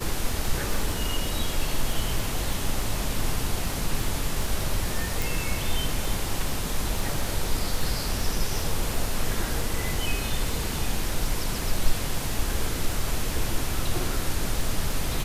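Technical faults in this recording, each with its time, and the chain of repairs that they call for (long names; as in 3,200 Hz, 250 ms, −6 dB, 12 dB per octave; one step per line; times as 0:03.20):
surface crackle 21 per second −29 dBFS
0:05.22: click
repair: click removal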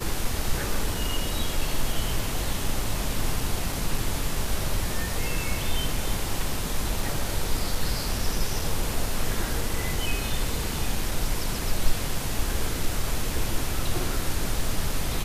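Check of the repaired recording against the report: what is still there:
none of them is left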